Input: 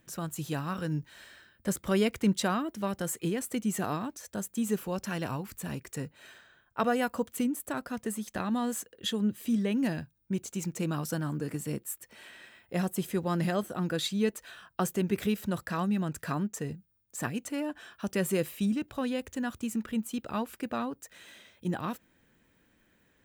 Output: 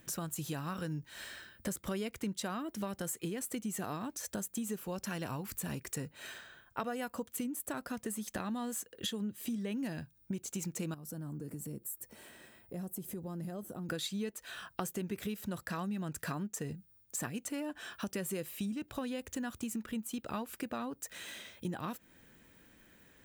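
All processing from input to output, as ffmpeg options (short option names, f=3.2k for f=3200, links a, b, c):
-filter_complex "[0:a]asettb=1/sr,asplit=3[a][b][c];[a]atrim=end=10.944[d];[b]atrim=start=10.94:end=13.89,asetpts=PTS-STARTPTS,afade=t=in:d=0.004:c=qsin,afade=t=out:st=2.946:d=0.004:c=qsin,equalizer=f=2.7k:w=0.37:g=-13.5,acompressor=threshold=-48dB:ratio=2.5:attack=3.2:release=140:knee=1:detection=peak[e];[c]atrim=start=13.886[f];[d][e]acrossfade=d=0.004:c1=hsin:c2=qsin[g];[g][f]acrossfade=d=0.004:c1=qsin:c2=hsin,highshelf=f=5.1k:g=5,acompressor=threshold=-41dB:ratio=5,volume=4.5dB"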